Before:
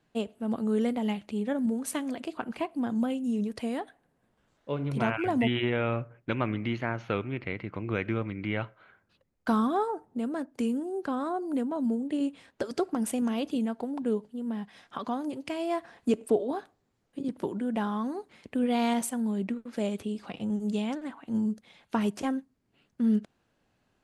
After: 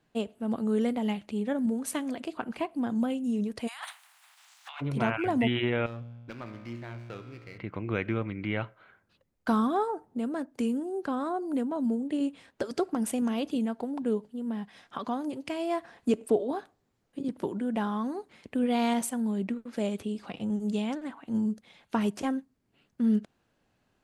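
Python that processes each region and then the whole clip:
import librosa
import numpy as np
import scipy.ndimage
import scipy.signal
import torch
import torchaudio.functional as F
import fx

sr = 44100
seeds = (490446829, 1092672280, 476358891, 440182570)

y = fx.spec_clip(x, sr, under_db=27, at=(3.67, 4.8), fade=0.02)
y = fx.steep_highpass(y, sr, hz=740.0, slope=48, at=(3.67, 4.8), fade=0.02)
y = fx.over_compress(y, sr, threshold_db=-45.0, ratio=-1.0, at=(3.67, 4.8), fade=0.02)
y = fx.chain(y, sr, fx.comb_fb(f0_hz=59.0, decay_s=1.7, harmonics='all', damping=0.0, mix_pct=80),
    fx.running_max(window=5), at=(5.86, 7.58))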